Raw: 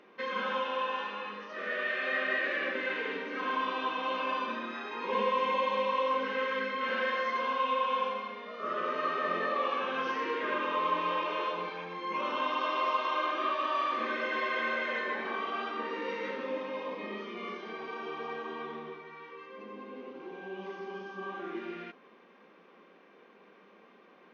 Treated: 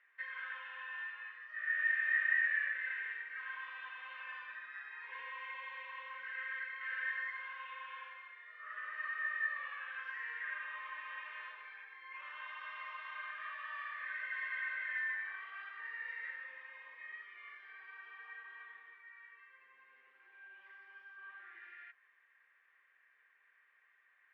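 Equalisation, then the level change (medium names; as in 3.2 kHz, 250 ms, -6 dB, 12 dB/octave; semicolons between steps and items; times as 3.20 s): ladder band-pass 1.9 kHz, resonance 80%; treble shelf 2 kHz -7 dB; +1.5 dB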